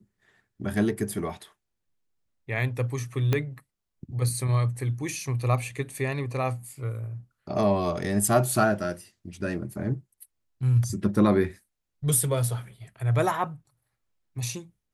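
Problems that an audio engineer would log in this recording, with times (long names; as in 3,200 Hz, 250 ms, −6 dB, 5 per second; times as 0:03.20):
0:03.33: click −11 dBFS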